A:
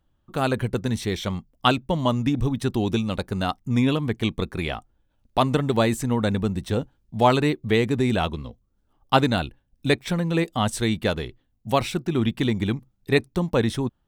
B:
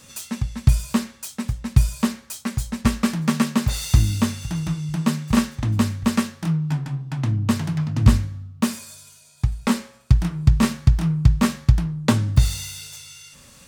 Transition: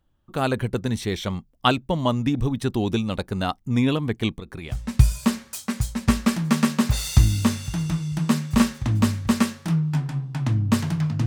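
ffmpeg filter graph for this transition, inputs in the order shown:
-filter_complex "[0:a]asettb=1/sr,asplit=3[a][b][c];[a]atrim=end=4.304[d];[b]atrim=start=4.3:end=4.77,asetpts=PTS-STARTPTS,afade=t=in:d=0.004:c=qsin,afade=t=out:st=0.466:d=0.004:c=qsin,acompressor=threshold=-30dB:ratio=10:attack=3.2:release=140:knee=1:detection=peak[e];[c]atrim=start=4.766[f];[d][e]acrossfade=d=0.004:c1=hsin:c2=qsin[g];[g][f]acrossfade=d=0.004:c1=qsin:c2=hsin,apad=whole_dur=11.26,atrim=end=11.26,atrim=end=4.77,asetpts=PTS-STARTPTS[h];[1:a]atrim=start=1.44:end=8.03,asetpts=PTS-STARTPTS[i];[h][i]acrossfade=d=0.1:c1=tri:c2=tri"

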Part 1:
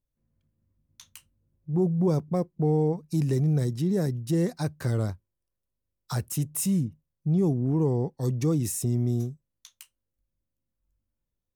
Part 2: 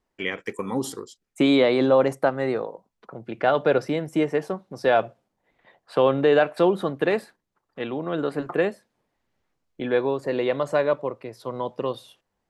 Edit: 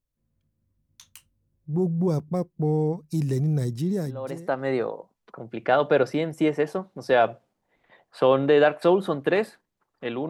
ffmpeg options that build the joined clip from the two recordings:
-filter_complex "[0:a]apad=whole_dur=10.29,atrim=end=10.29,atrim=end=4.71,asetpts=PTS-STARTPTS[a];[1:a]atrim=start=1.66:end=8.04,asetpts=PTS-STARTPTS[b];[a][b]acrossfade=d=0.8:c1=qua:c2=qua"

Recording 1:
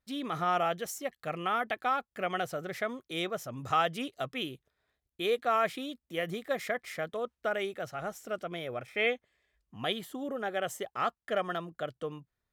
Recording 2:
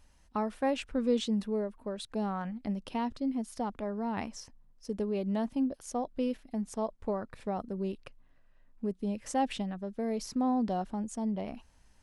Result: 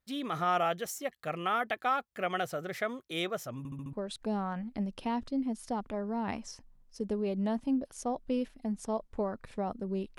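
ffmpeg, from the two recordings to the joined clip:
-filter_complex "[0:a]apad=whole_dur=10.18,atrim=end=10.18,asplit=5[a][b][c][d][e];[a]atrim=end=3.652[f];[b]atrim=start=3.578:end=3.652[g];[c]atrim=start=3.578:end=3.652[h];[d]atrim=start=3.578:end=3.652[i];[e]atrim=start=3.578:end=3.652[j];[1:a]atrim=start=1.818:end=8.07[k];[f][g]acrossfade=d=0.004:c1=hsin:c2=hsin[l];[l][h]acrossfade=d=0.004:c1=hsin:c2=hsin[m];[m][i]acrossfade=d=0.004:c1=hsin:c2=hsin[n];[n][j]acrossfade=d=0.004:c1=hsin:c2=hsin[o];[o][k]acrossfade=d=0.004:c1=hsin:c2=hsin"

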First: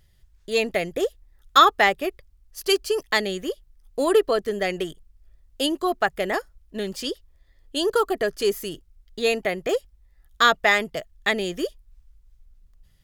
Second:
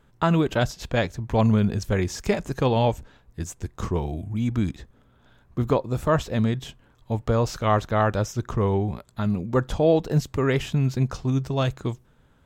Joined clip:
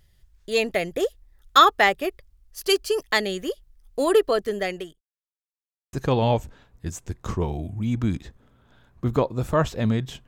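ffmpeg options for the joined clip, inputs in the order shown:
-filter_complex "[0:a]apad=whole_dur=10.27,atrim=end=10.27,asplit=2[a][b];[a]atrim=end=5.01,asetpts=PTS-STARTPTS,afade=t=out:st=4.4:d=0.61:c=qsin[c];[b]atrim=start=5.01:end=5.93,asetpts=PTS-STARTPTS,volume=0[d];[1:a]atrim=start=2.47:end=6.81,asetpts=PTS-STARTPTS,afade=t=in:d=0.004:c=hsin[e];[c][d][e]concat=n=3:v=0:a=1"

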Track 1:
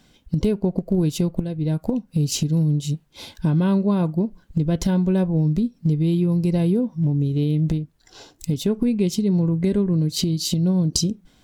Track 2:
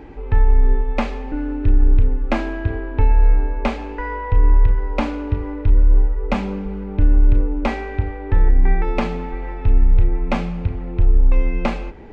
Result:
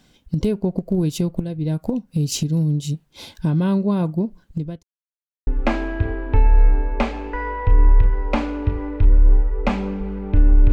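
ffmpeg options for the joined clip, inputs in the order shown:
-filter_complex "[0:a]apad=whole_dur=10.72,atrim=end=10.72,asplit=2[a][b];[a]atrim=end=4.83,asetpts=PTS-STARTPTS,afade=t=out:st=4.26:d=0.57:c=qsin[c];[b]atrim=start=4.83:end=5.47,asetpts=PTS-STARTPTS,volume=0[d];[1:a]atrim=start=2.12:end=7.37,asetpts=PTS-STARTPTS,afade=t=in:d=0.004:c=hsin[e];[c][d][e]concat=n=3:v=0:a=1"

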